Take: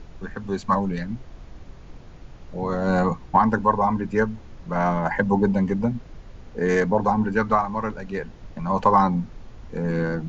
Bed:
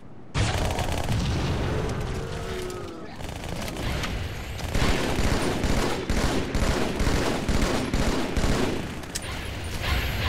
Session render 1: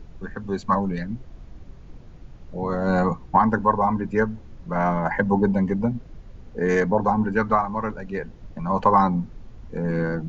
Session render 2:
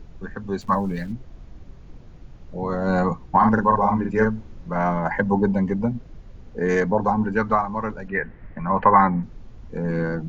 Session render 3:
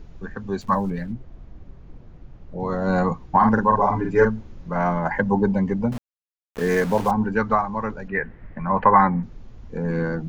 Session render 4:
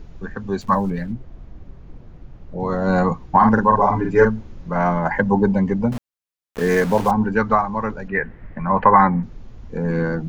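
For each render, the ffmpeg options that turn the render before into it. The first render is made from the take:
-af "afftdn=nr=6:nf=-44"
-filter_complex "[0:a]asplit=3[a][b][c];[a]afade=t=out:st=0.6:d=0.02[d];[b]aeval=exprs='val(0)*gte(abs(val(0)),0.00631)':c=same,afade=t=in:st=0.6:d=0.02,afade=t=out:st=1.11:d=0.02[e];[c]afade=t=in:st=1.11:d=0.02[f];[d][e][f]amix=inputs=3:normalize=0,asettb=1/sr,asplit=3[g][h][i];[g]atrim=end=3.374[j];[h]atrim=start=3.37:end=4.69,asetpts=PTS-STARTPTS,afade=t=in:d=0.004:c=qsin,afade=t=out:st=1.316:d=0.004:c=qsin,asplit=2[k][l];[l]adelay=46,volume=-3.5dB[m];[k][m]amix=inputs=2:normalize=0,atrim=end_sample=58212[n];[i]atrim=start=4.686[o];[j][n]acrossfade=d=0.004:c1=hsin:c2=qsin[p];[p][o]acrossfade=d=0.004:c1=qsin:c2=hsin,asettb=1/sr,asplit=3[q][r][s];[q]atrim=end=8.084[t];[r]atrim=start=8.08:end=9.23,asetpts=PTS-STARTPTS,afade=t=in:d=0.004:c=qsin,afade=t=out:st=1.146:d=0.004:c=qsin,lowpass=f=1.9k:t=q:w=4.2[u];[s]atrim=start=9.226[v];[t][u]acrossfade=d=0.004:c1=hsin:c2=qsin[w];[w][v]acrossfade=d=0.004:c1=qsin:c2=hsin"
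-filter_complex "[0:a]asettb=1/sr,asplit=3[a][b][c];[a]atrim=end=0.904[d];[b]atrim=start=0.9:end=2.6,asetpts=PTS-STARTPTS,afade=t=in:d=0.004:c=qsin,afade=t=out:st=1.696:d=0.004:c=qsin,highshelf=f=3.3k:g=-11.5[e];[c]atrim=start=2.596[f];[d][e]acrossfade=d=0.004:c1=hsin:c2=qsin[g];[g][f]acrossfade=d=0.004:c1=qsin:c2=hsin,asettb=1/sr,asplit=3[h][i][j];[h]atrim=end=3.794[k];[i]atrim=start=3.79:end=4.25,asetpts=PTS-STARTPTS,afade=t=in:d=0.004:c=qsin,afade=t=out:st=0.456:d=0.004:c=qsin,aecho=1:1:7:0.76,atrim=end_sample=20286[l];[j]atrim=start=4.246[m];[k][l]acrossfade=d=0.004:c1=hsin:c2=qsin[n];[n][m]acrossfade=d=0.004:c1=qsin:c2=hsin,asettb=1/sr,asplit=3[o][p][q];[o]atrim=end=5.924[r];[p]atrim=start=5.92:end=7.11,asetpts=PTS-STARTPTS,afade=t=in:d=0.004:c=qsin,afade=t=out:st=1.186:d=0.004:c=qsin,aeval=exprs='val(0)*gte(abs(val(0)),0.0299)':c=same[s];[q]atrim=start=7.106[t];[r][s]acrossfade=d=0.004:c1=hsin:c2=qsin[u];[u][t]acrossfade=d=0.004:c1=qsin:c2=hsin"
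-af "volume=3dB,alimiter=limit=-2dB:level=0:latency=1"

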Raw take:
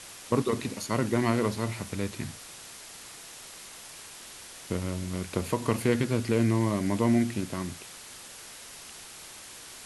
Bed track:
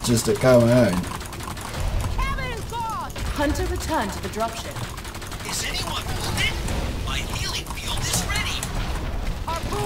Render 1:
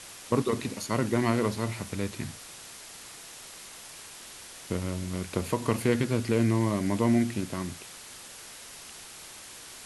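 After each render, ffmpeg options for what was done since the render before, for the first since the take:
-af anull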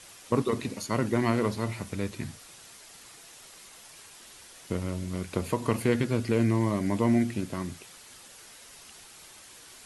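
-af "afftdn=nr=6:nf=-46"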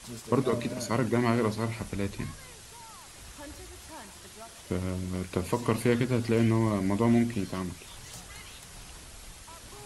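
-filter_complex "[1:a]volume=-22.5dB[a];[0:a][a]amix=inputs=2:normalize=0"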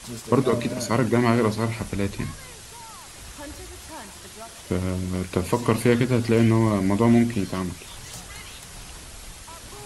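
-af "volume=6dB"

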